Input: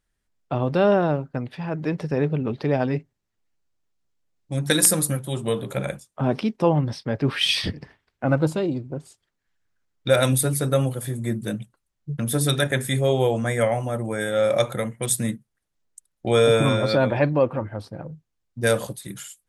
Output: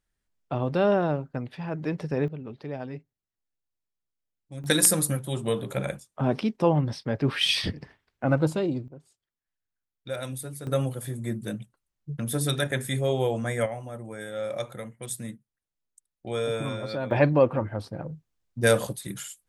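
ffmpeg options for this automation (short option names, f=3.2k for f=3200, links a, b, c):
-af "asetnsamples=n=441:p=0,asendcmd='2.28 volume volume -13dB;4.64 volume volume -2.5dB;8.88 volume volume -15dB;10.67 volume volume -5dB;13.66 volume volume -11.5dB;17.11 volume volume 0dB',volume=-4dB"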